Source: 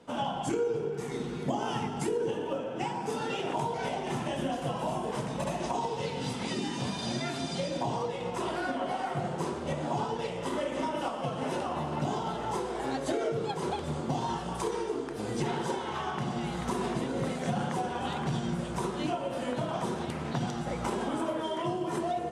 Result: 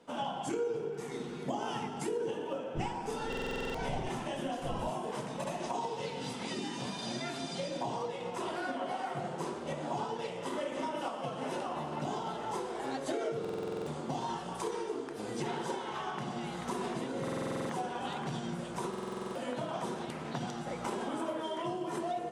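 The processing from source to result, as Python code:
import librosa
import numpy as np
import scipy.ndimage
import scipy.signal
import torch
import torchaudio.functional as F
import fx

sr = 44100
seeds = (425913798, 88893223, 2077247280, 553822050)

y = fx.dmg_wind(x, sr, seeds[0], corner_hz=120.0, level_db=-32.0, at=(2.74, 4.88), fade=0.02)
y = fx.peak_eq(y, sr, hz=67.0, db=-13.0, octaves=1.6)
y = fx.buffer_glitch(y, sr, at_s=(3.28, 13.4, 17.23, 18.89), block=2048, repeats=9)
y = y * 10.0 ** (-3.5 / 20.0)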